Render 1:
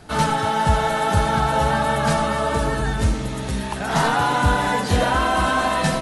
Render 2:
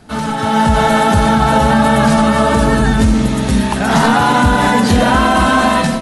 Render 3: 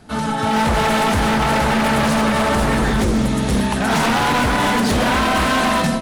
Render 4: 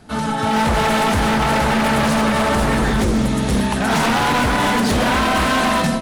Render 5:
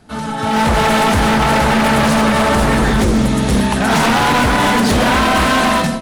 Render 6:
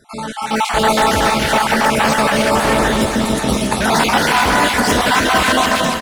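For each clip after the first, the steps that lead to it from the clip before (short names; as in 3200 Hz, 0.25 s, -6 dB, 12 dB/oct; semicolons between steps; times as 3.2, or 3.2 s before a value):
bell 230 Hz +13 dB 0.28 oct; limiter -11.5 dBFS, peak gain reduction 7 dB; AGC gain up to 11.5 dB
wavefolder -9 dBFS; gain -2.5 dB
nothing audible
AGC gain up to 6 dB; gain -2 dB
random spectral dropouts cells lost 34%; tone controls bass -8 dB, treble +2 dB; feedback echo 0.283 s, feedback 55%, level -6.5 dB; gain +1 dB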